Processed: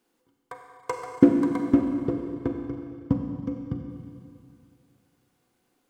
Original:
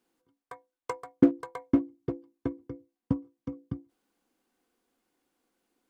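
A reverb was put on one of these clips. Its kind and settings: Schroeder reverb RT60 2.4 s, combs from 31 ms, DRR 2.5 dB; trim +4 dB

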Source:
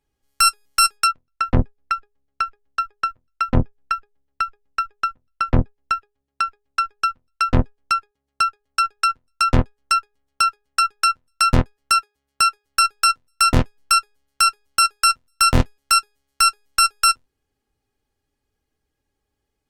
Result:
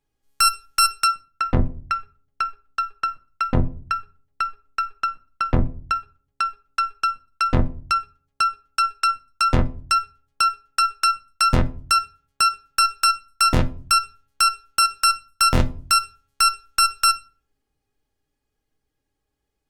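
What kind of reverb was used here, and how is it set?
simulated room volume 280 m³, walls furnished, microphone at 0.53 m; trim -2 dB

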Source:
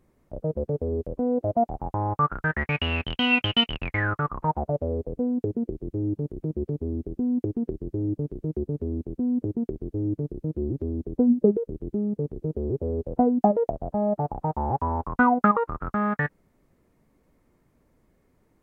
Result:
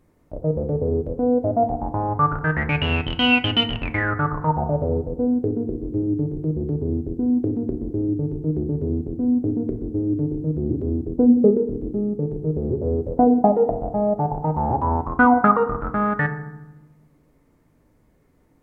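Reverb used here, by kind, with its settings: FDN reverb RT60 0.98 s, low-frequency decay 1.55×, high-frequency decay 0.4×, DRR 6.5 dB; trim +3 dB

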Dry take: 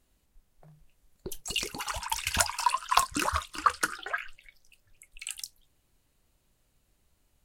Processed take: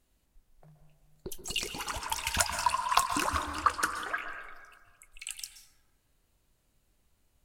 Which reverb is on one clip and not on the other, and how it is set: plate-style reverb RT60 1.6 s, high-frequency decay 0.3×, pre-delay 115 ms, DRR 6.5 dB; trim -2 dB

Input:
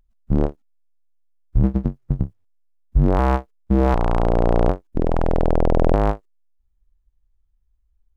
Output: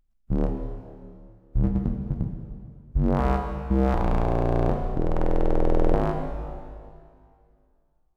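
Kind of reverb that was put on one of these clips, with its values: plate-style reverb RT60 2.3 s, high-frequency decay 0.95×, DRR 3.5 dB; trim -6 dB

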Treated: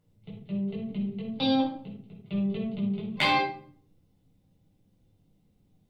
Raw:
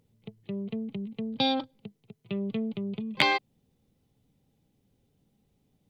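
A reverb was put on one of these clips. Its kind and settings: simulated room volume 720 m³, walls furnished, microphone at 7.2 m; trim -9 dB

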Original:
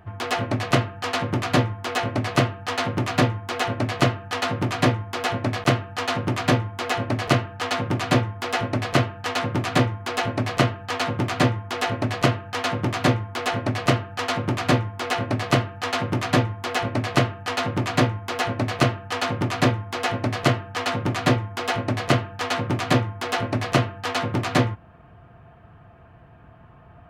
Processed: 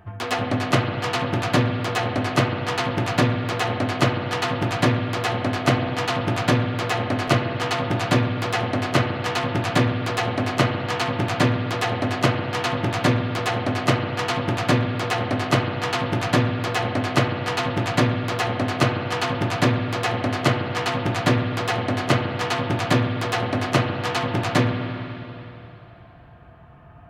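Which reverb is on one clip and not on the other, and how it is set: spring tank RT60 3.1 s, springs 47/51 ms, chirp 20 ms, DRR 4 dB

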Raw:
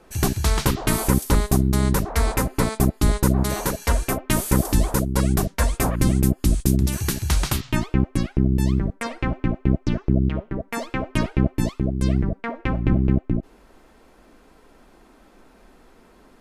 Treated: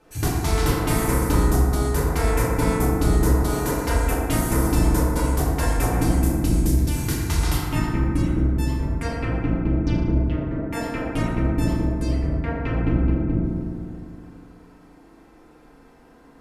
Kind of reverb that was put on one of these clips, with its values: FDN reverb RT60 2.4 s, low-frequency decay 1.05×, high-frequency decay 0.3×, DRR -7 dB; trim -7.5 dB

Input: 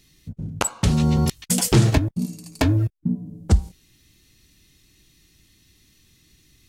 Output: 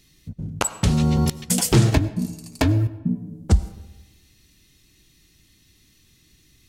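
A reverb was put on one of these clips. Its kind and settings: algorithmic reverb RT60 1.1 s, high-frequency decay 0.55×, pre-delay 55 ms, DRR 16.5 dB

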